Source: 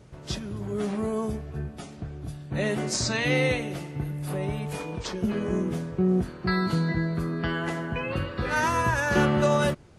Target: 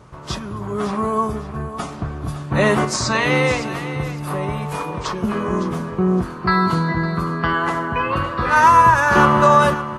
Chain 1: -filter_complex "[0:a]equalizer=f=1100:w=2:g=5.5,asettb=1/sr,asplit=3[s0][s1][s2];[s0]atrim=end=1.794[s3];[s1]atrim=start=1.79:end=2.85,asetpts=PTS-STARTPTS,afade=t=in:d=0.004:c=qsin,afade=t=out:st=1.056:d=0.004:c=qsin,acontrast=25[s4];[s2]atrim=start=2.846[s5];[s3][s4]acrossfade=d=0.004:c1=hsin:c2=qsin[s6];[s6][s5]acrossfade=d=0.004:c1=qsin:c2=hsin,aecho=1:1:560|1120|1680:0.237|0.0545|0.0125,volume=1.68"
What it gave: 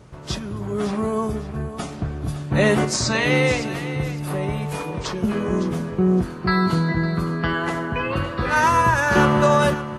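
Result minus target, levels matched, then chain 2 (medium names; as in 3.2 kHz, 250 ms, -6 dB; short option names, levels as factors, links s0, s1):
1 kHz band -3.5 dB
-filter_complex "[0:a]equalizer=f=1100:w=2:g=14.5,asettb=1/sr,asplit=3[s0][s1][s2];[s0]atrim=end=1.794[s3];[s1]atrim=start=1.79:end=2.85,asetpts=PTS-STARTPTS,afade=t=in:d=0.004:c=qsin,afade=t=out:st=1.056:d=0.004:c=qsin,acontrast=25[s4];[s2]atrim=start=2.846[s5];[s3][s4]acrossfade=d=0.004:c1=hsin:c2=qsin[s6];[s6][s5]acrossfade=d=0.004:c1=qsin:c2=hsin,aecho=1:1:560|1120|1680:0.237|0.0545|0.0125,volume=1.68"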